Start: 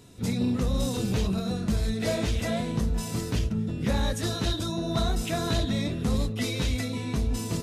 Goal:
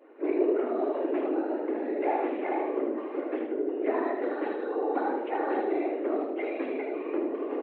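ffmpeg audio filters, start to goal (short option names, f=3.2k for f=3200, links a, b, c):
-filter_complex "[0:a]afftfilt=real='hypot(re,im)*cos(2*PI*random(0))':imag='hypot(re,im)*sin(2*PI*random(1))':win_size=512:overlap=0.75,adynamicequalizer=threshold=0.00224:dfrequency=1400:dqfactor=0.83:tfrequency=1400:tqfactor=0.83:attack=5:release=100:ratio=0.375:range=2.5:mode=cutabove:tftype=bell,highpass=f=180:t=q:w=0.5412,highpass=f=180:t=q:w=1.307,lowpass=f=2.1k:t=q:w=0.5176,lowpass=f=2.1k:t=q:w=0.7071,lowpass=f=2.1k:t=q:w=1.932,afreqshift=130,asplit=2[a][b];[b]aecho=0:1:77|154|231|308|385:0.531|0.202|0.0767|0.0291|0.0111[c];[a][c]amix=inputs=2:normalize=0,volume=7dB"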